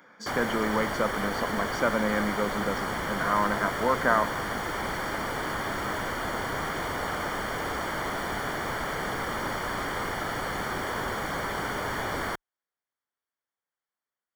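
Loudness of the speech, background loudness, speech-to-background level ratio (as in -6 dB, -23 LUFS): -29.0 LUFS, -31.0 LUFS, 2.0 dB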